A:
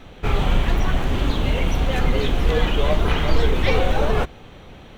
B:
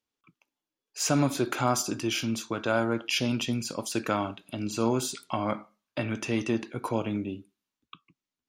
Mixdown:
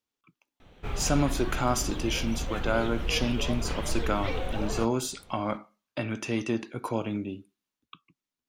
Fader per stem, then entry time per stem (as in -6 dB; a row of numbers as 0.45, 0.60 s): -13.0, -1.0 dB; 0.60, 0.00 s